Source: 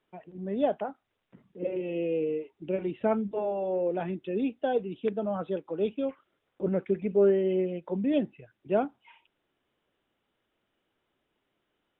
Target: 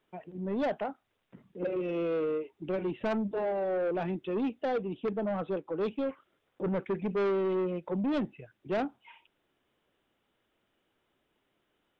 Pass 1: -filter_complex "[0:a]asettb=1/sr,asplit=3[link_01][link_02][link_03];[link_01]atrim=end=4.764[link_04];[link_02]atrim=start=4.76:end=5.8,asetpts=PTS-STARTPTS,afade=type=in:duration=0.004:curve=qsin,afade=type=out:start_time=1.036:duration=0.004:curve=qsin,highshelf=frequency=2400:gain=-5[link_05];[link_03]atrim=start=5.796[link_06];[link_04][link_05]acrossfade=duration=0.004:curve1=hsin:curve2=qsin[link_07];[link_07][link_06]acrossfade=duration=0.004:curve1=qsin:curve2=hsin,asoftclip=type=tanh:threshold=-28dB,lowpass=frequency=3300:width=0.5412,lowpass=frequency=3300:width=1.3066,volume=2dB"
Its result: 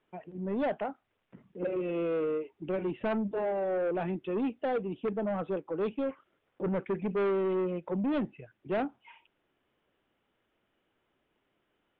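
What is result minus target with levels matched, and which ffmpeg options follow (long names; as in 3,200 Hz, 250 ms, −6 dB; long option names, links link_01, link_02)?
4,000 Hz band −2.5 dB
-filter_complex "[0:a]asettb=1/sr,asplit=3[link_01][link_02][link_03];[link_01]atrim=end=4.764[link_04];[link_02]atrim=start=4.76:end=5.8,asetpts=PTS-STARTPTS,afade=type=in:duration=0.004:curve=qsin,afade=type=out:start_time=1.036:duration=0.004:curve=qsin,highshelf=frequency=2400:gain=-5[link_05];[link_03]atrim=start=5.796[link_06];[link_04][link_05]acrossfade=duration=0.004:curve1=hsin:curve2=qsin[link_07];[link_07][link_06]acrossfade=duration=0.004:curve1=qsin:curve2=hsin,asoftclip=type=tanh:threshold=-28dB,volume=2dB"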